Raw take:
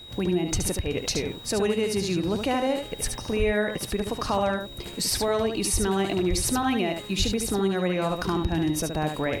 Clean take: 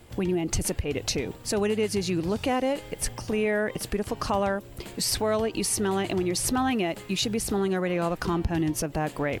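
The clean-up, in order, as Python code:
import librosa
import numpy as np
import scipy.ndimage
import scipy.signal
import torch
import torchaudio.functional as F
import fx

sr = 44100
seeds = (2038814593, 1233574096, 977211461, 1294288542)

y = fx.notch(x, sr, hz=3800.0, q=30.0)
y = fx.fix_deplosive(y, sr, at_s=(3.38, 5.72, 6.29, 7.18))
y = fx.fix_echo_inverse(y, sr, delay_ms=72, level_db=-6.0)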